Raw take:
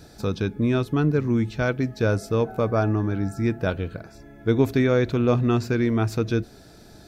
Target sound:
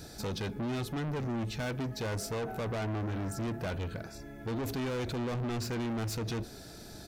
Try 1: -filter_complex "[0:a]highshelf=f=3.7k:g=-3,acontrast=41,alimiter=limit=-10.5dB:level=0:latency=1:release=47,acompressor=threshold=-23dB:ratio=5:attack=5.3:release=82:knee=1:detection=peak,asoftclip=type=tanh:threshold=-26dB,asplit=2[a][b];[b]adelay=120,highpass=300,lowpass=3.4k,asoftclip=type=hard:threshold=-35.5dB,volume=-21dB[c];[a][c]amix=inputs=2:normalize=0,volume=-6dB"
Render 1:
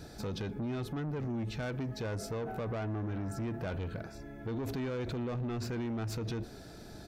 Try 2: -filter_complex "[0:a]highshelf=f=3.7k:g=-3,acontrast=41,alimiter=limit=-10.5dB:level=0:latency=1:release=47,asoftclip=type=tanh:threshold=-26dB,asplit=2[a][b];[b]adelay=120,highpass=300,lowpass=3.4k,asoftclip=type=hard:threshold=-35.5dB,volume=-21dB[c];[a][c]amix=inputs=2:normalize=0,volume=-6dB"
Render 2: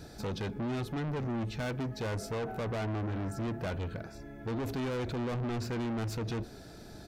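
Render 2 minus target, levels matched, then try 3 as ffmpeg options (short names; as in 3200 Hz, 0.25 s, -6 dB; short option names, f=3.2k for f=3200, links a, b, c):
8000 Hz band -5.5 dB
-filter_complex "[0:a]highshelf=f=3.7k:g=6,acontrast=41,alimiter=limit=-10.5dB:level=0:latency=1:release=47,asoftclip=type=tanh:threshold=-26dB,asplit=2[a][b];[b]adelay=120,highpass=300,lowpass=3.4k,asoftclip=type=hard:threshold=-35.5dB,volume=-21dB[c];[a][c]amix=inputs=2:normalize=0,volume=-6dB"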